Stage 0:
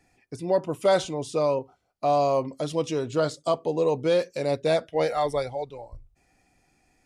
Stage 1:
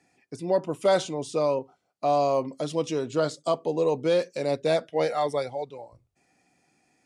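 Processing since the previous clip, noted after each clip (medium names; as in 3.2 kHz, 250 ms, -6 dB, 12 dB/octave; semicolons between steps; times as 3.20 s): Chebyshev band-pass 170–9200 Hz, order 2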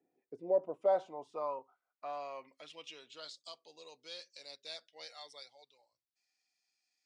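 band-pass sweep 390 Hz -> 4.5 kHz, 0.09–3.52 s; trim -5 dB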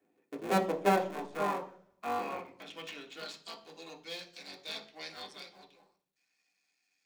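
cycle switcher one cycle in 3, muted; reverberation RT60 0.55 s, pre-delay 3 ms, DRR 0.5 dB; trim +4 dB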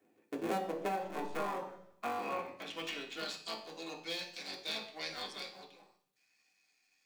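compression 16:1, threshold -36 dBFS, peak gain reduction 16 dB; feedback comb 110 Hz, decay 0.54 s, harmonics all, mix 70%; flange 0.66 Hz, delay 7.5 ms, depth 7.2 ms, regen +84%; trim +16 dB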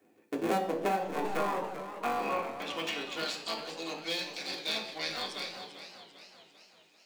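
modulated delay 393 ms, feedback 54%, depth 105 cents, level -11 dB; trim +5.5 dB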